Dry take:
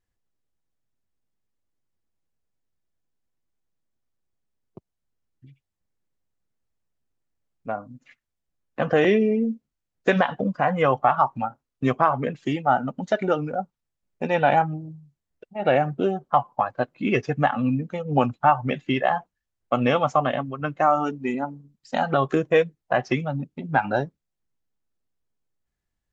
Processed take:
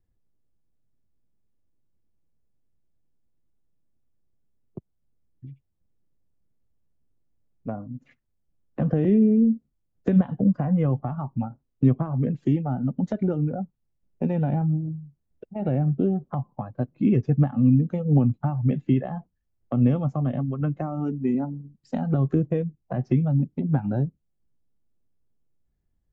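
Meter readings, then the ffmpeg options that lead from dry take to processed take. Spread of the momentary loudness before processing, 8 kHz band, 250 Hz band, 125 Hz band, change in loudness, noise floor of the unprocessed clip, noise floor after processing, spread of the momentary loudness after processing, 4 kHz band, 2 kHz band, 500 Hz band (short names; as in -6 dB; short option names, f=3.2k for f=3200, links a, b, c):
12 LU, n/a, +4.5 dB, +8.0 dB, -0.5 dB, -83 dBFS, -75 dBFS, 14 LU, under -15 dB, under -15 dB, -7.5 dB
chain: -filter_complex "[0:a]acrossover=split=260[a][b];[b]acompressor=threshold=-33dB:ratio=6[c];[a][c]amix=inputs=2:normalize=0,tiltshelf=f=690:g=9.5"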